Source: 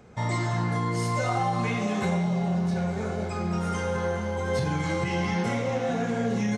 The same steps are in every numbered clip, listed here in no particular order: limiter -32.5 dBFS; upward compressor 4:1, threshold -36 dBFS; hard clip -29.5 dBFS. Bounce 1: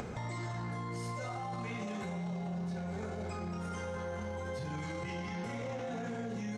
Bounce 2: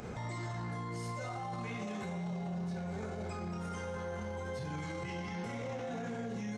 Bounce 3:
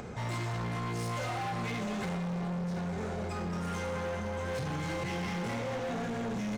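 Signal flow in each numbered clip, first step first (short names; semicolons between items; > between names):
limiter > upward compressor > hard clip; upward compressor > limiter > hard clip; upward compressor > hard clip > limiter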